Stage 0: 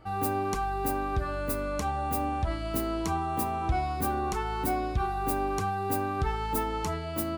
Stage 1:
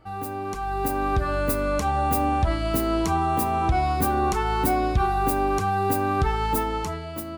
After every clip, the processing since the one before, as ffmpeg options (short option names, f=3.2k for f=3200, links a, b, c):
-af "alimiter=limit=-20dB:level=0:latency=1:release=186,dynaudnorm=f=120:g=13:m=9dB,volume=-1dB"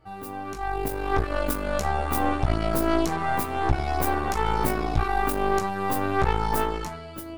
-af "flanger=delay=15.5:depth=2.9:speed=0.54,aeval=exprs='0.251*(cos(1*acos(clip(val(0)/0.251,-1,1)))-cos(1*PI/2))+0.0794*(cos(4*acos(clip(val(0)/0.251,-1,1)))-cos(4*PI/2))':c=same,volume=-1dB"